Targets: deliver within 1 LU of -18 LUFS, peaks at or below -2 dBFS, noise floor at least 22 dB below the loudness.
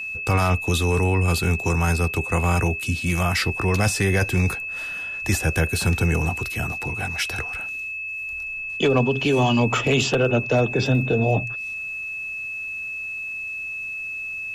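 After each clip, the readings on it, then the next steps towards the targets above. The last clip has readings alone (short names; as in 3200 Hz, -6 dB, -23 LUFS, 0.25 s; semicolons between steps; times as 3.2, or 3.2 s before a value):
steady tone 2600 Hz; tone level -28 dBFS; loudness -22.5 LUFS; peak -9.0 dBFS; loudness target -18.0 LUFS
-> notch 2600 Hz, Q 30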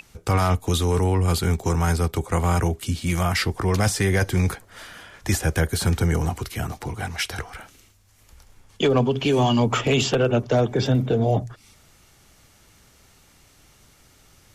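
steady tone none; loudness -22.5 LUFS; peak -10.0 dBFS; loudness target -18.0 LUFS
-> gain +4.5 dB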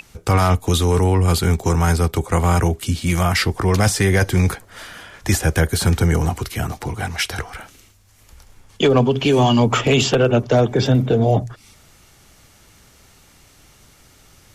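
loudness -18.0 LUFS; peak -5.5 dBFS; noise floor -51 dBFS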